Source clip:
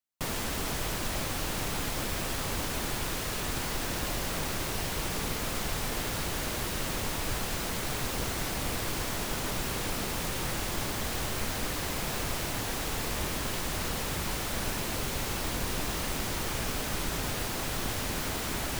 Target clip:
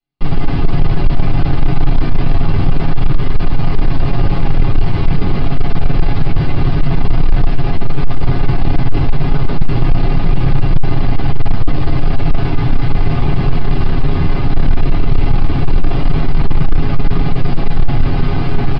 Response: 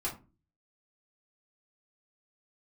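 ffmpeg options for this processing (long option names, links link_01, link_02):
-filter_complex "[0:a]bass=frequency=250:gain=10,treble=frequency=4000:gain=-8,aecho=1:1:7.3:0.65,asplit=2[link_01][link_02];[link_02]adelay=209,lowpass=frequency=2000:poles=1,volume=-7.5dB,asplit=2[link_03][link_04];[link_04]adelay=209,lowpass=frequency=2000:poles=1,volume=0.54,asplit=2[link_05][link_06];[link_06]adelay=209,lowpass=frequency=2000:poles=1,volume=0.54,asplit=2[link_07][link_08];[link_08]adelay=209,lowpass=frequency=2000:poles=1,volume=0.54,asplit=2[link_09][link_10];[link_10]adelay=209,lowpass=frequency=2000:poles=1,volume=0.54,asplit=2[link_11][link_12];[link_12]adelay=209,lowpass=frequency=2000:poles=1,volume=0.54,asplit=2[link_13][link_14];[link_14]adelay=209,lowpass=frequency=2000:poles=1,volume=0.54[link_15];[link_01][link_03][link_05][link_07][link_09][link_11][link_13][link_15]amix=inputs=8:normalize=0,acrossover=split=2400[link_16][link_17];[link_17]acontrast=48[link_18];[link_16][link_18]amix=inputs=2:normalize=0,aresample=11025,aresample=44100,asplit=2[link_19][link_20];[link_20]adynamicsmooth=sensitivity=1.5:basefreq=960,volume=3dB[link_21];[link_19][link_21]amix=inputs=2:normalize=0[link_22];[1:a]atrim=start_sample=2205[link_23];[link_22][link_23]afir=irnorm=-1:irlink=0,asoftclip=type=tanh:threshold=-1.5dB,equalizer=frequency=2900:width=1.5:gain=2.5"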